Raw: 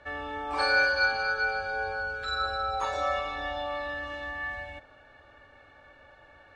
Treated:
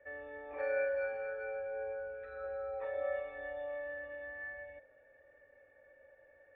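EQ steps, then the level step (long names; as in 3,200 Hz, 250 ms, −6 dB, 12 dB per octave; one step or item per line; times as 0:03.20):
formant resonators in series e
+1.5 dB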